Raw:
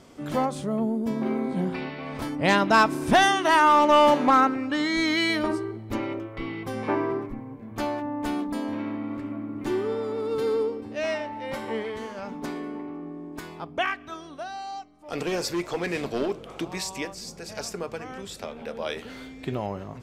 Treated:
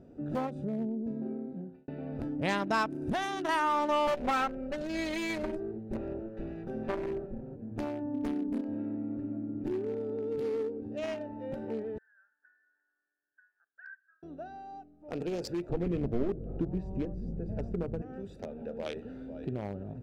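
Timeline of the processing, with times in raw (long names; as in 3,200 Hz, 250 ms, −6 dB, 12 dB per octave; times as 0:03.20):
0:00.65–0:01.88: fade out
0:02.92–0:03.49: downward compressor 5 to 1, threshold −20 dBFS
0:04.07–0:07.56: lower of the sound and its delayed copy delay 5.2 ms
0:08.14–0:08.61: hollow resonant body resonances 250/410/1,500/3,200 Hz, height 11 dB, ringing for 85 ms
0:11.98–0:14.23: flat-topped band-pass 1,600 Hz, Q 7
0:15.69–0:18.02: spectral tilt −4.5 dB per octave
0:18.77–0:19.40: delay throw 500 ms, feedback 25%, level −10 dB
whole clip: adaptive Wiener filter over 41 samples; downward compressor 2 to 1, threshold −34 dBFS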